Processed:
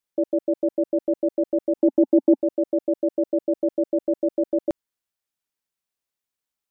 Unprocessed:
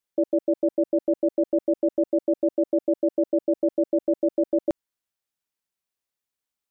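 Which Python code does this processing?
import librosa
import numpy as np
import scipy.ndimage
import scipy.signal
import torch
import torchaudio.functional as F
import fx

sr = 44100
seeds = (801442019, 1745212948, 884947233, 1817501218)

y = fx.small_body(x, sr, hz=(260.0, 840.0), ring_ms=25, db=fx.line((1.76, 11.0), (2.4, 15.0)), at=(1.76, 2.4), fade=0.02)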